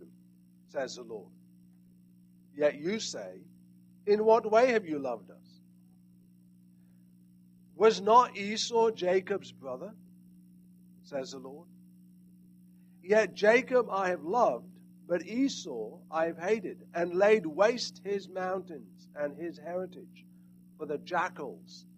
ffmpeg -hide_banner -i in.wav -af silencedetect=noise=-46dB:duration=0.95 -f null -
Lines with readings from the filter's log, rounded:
silence_start: 1.27
silence_end: 2.57 | silence_duration: 1.30
silence_start: 5.35
silence_end: 7.77 | silence_duration: 2.42
silence_start: 9.92
silence_end: 11.08 | silence_duration: 1.15
silence_start: 11.62
silence_end: 13.05 | silence_duration: 1.43